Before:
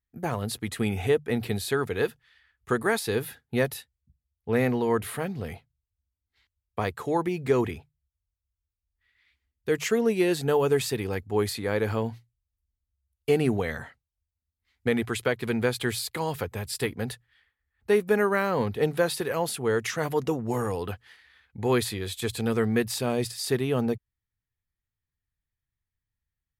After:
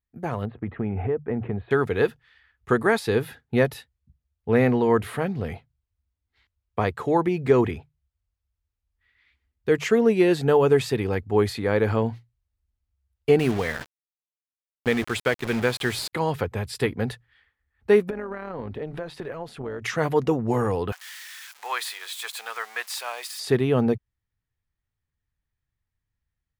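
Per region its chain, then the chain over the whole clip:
0.45–1.71 Gaussian blur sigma 4.7 samples + compressor 3:1, threshold -28 dBFS
13.39–16.13 tilt shelf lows -4 dB, about 1400 Hz + requantised 6-bit, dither none
18.1–19.82 compressor 8:1, threshold -31 dBFS + LPF 2900 Hz 6 dB/oct + AM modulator 160 Hz, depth 35%
20.92–23.4 switching spikes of -29 dBFS + HPF 850 Hz 24 dB/oct
whole clip: LPF 2600 Hz 6 dB/oct; AGC gain up to 5 dB

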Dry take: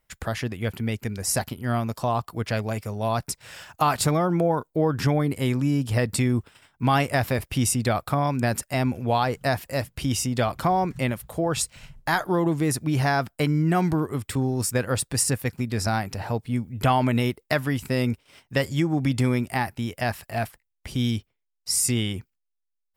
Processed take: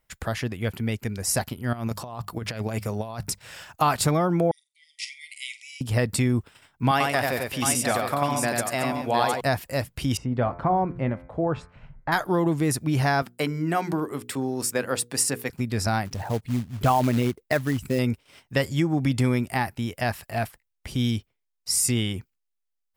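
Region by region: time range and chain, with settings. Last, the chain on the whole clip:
1.73–3.39 notches 50/100/150/200 Hz + negative-ratio compressor -29 dBFS, ratio -0.5
4.51–5.81 brick-wall FIR band-pass 1900–11000 Hz + flutter echo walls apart 7.7 m, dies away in 0.24 s
6.91–9.41 HPF 390 Hz 6 dB/oct + tapped delay 91/225/711 ms -3/-13/-6.5 dB
10.17–12.12 LPF 1400 Hz + de-hum 87.24 Hz, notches 28
13.22–15.5 HPF 220 Hz + notches 60/120/180/240/300/360/420/480 Hz
16.05–17.99 formant sharpening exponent 1.5 + short-mantissa float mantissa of 2-bit
whole clip: dry

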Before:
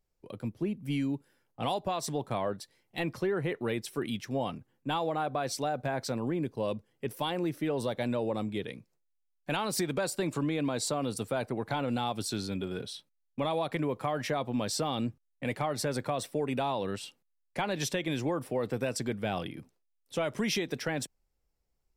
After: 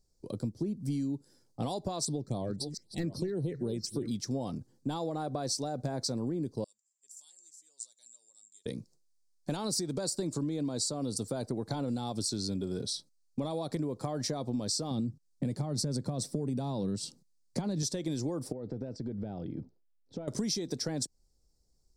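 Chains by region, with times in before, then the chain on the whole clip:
2.05–4.11 reverse delay 0.363 s, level -13 dB + phaser stages 6, 3.8 Hz, lowest notch 790–2100 Hz
6.64–8.66 band-pass 7300 Hz, Q 17 + tilt +2.5 dB/oct
14.91–17.83 bell 160 Hz +11 dB 1.6 oct + compressor 2:1, threshold -28 dBFS
18.52–20.28 compressor, threshold -38 dBFS + Butterworth band-stop 1100 Hz, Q 7.2 + tape spacing loss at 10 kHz 38 dB
whole clip: EQ curve 310 Hz 0 dB, 2800 Hz -18 dB, 4600 Hz +6 dB, 8700 Hz +4 dB, 12000 Hz -7 dB; compressor 6:1, threshold -38 dBFS; gain +7.5 dB

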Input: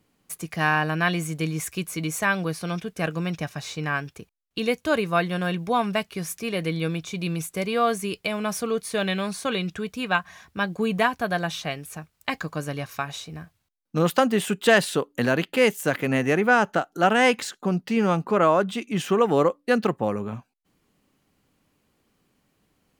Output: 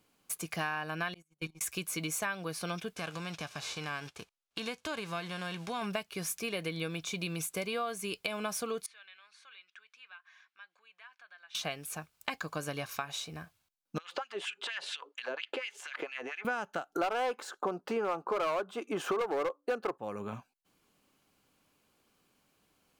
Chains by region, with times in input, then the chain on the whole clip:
1.14–1.61 gate -25 dBFS, range -40 dB + level quantiser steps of 16 dB + comb 5.5 ms, depth 90%
2.95–5.81 spectral whitening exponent 0.6 + compressor 2.5:1, threshold -32 dBFS + air absorption 55 m
8.86–11.55 compressor 4:1, threshold -35 dBFS + ladder band-pass 2200 Hz, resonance 25%
13.98–16.45 compressor 12:1, threshold -29 dBFS + LFO high-pass sine 4.3 Hz 360–2800 Hz + air absorption 120 m
16.95–19.98 band shelf 670 Hz +14.5 dB 2.7 oct + hard clip -3.5 dBFS
whole clip: low shelf 380 Hz -9.5 dB; notch 1900 Hz, Q 9.5; compressor 6:1, threshold -32 dBFS

